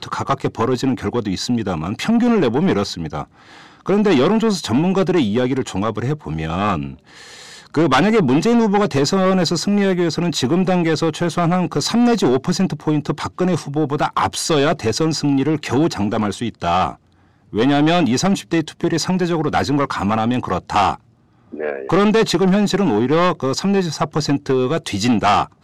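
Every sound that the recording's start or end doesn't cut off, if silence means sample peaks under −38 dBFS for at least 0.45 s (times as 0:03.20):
0:17.53–0:20.96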